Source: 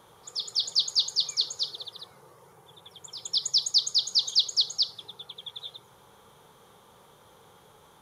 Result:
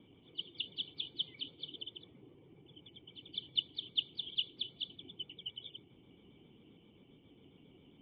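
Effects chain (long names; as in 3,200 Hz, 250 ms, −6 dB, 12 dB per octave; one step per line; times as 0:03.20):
pitch shifter gated in a rhythm −2.5 semitones, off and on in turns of 67 ms
formant resonators in series i
level +10 dB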